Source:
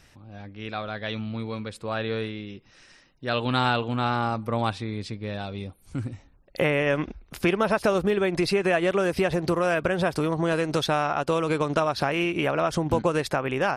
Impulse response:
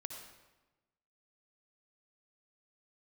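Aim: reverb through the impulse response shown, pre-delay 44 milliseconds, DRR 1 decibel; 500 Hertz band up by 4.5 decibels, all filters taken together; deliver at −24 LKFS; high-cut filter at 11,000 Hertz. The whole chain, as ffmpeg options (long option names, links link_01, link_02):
-filter_complex "[0:a]lowpass=11000,equalizer=frequency=500:width_type=o:gain=5.5,asplit=2[link_01][link_02];[1:a]atrim=start_sample=2205,adelay=44[link_03];[link_02][link_03]afir=irnorm=-1:irlink=0,volume=1.5dB[link_04];[link_01][link_04]amix=inputs=2:normalize=0,volume=-3.5dB"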